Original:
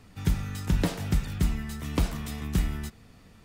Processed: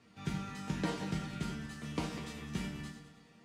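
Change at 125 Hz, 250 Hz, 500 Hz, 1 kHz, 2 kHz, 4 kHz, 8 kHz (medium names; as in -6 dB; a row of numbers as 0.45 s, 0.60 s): -11.5 dB, -6.5 dB, -6.0 dB, -3.5 dB, -5.0 dB, -6.0 dB, -9.0 dB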